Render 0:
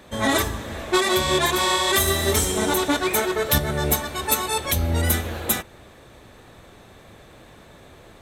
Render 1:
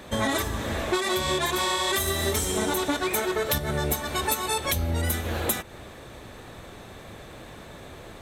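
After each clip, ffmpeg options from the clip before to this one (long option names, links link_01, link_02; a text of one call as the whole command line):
ffmpeg -i in.wav -af "acompressor=threshold=-27dB:ratio=6,volume=4dB" out.wav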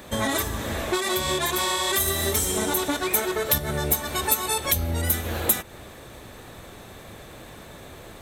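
ffmpeg -i in.wav -af "highshelf=frequency=9600:gain=10" out.wav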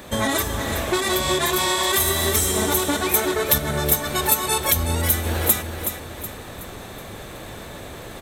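ffmpeg -i in.wav -af "areverse,acompressor=mode=upward:threshold=-34dB:ratio=2.5,areverse,aecho=1:1:372|744|1116|1488|1860:0.376|0.158|0.0663|0.0278|0.0117,volume=3dB" out.wav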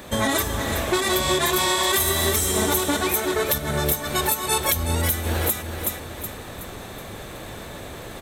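ffmpeg -i in.wav -af "alimiter=limit=-9dB:level=0:latency=1:release=215" out.wav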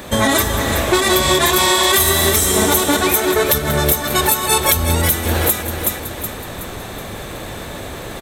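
ffmpeg -i in.wav -af "aecho=1:1:187:0.237,volume=7dB" out.wav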